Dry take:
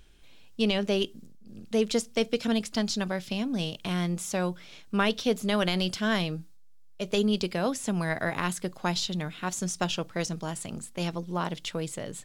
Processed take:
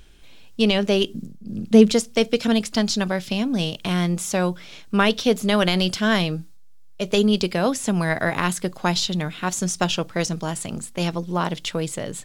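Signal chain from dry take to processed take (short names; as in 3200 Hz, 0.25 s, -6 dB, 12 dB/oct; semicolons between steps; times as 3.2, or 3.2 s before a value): 1.09–1.94 bell 170 Hz +10.5 dB 2.1 oct; gain +7 dB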